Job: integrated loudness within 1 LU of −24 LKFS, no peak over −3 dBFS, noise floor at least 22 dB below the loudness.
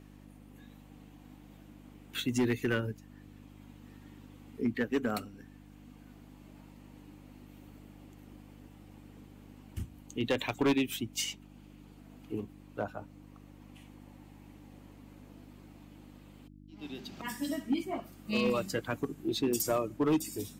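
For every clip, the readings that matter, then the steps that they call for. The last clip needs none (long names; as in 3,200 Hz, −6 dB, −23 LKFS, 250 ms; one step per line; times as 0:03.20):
share of clipped samples 0.5%; peaks flattened at −22.5 dBFS; mains hum 50 Hz; hum harmonics up to 300 Hz; level of the hum −52 dBFS; integrated loudness −33.5 LKFS; sample peak −22.5 dBFS; target loudness −24.0 LKFS
→ clipped peaks rebuilt −22.5 dBFS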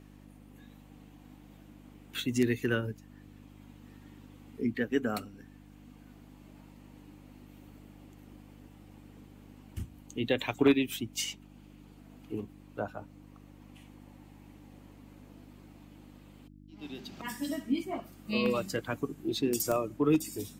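share of clipped samples 0.0%; mains hum 50 Hz; hum harmonics up to 300 Hz; level of the hum −52 dBFS
→ hum removal 50 Hz, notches 6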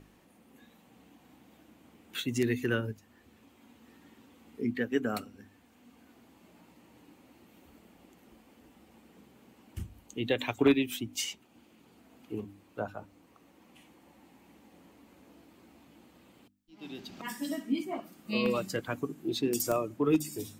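mains hum none found; integrated loudness −32.5 LKFS; sample peak −13.5 dBFS; target loudness −24.0 LKFS
→ level +8.5 dB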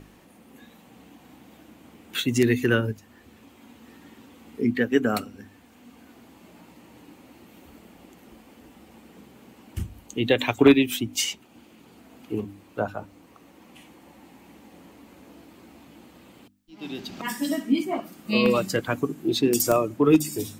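integrated loudness −24.0 LKFS; sample peak −5.0 dBFS; background noise floor −54 dBFS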